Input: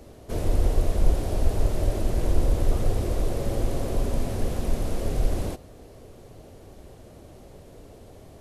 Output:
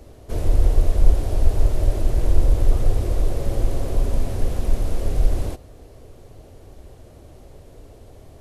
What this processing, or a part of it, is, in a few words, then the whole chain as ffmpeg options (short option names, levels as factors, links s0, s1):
low shelf boost with a cut just above: -af "lowshelf=f=100:g=7,equalizer=f=190:t=o:w=0.57:g=-5"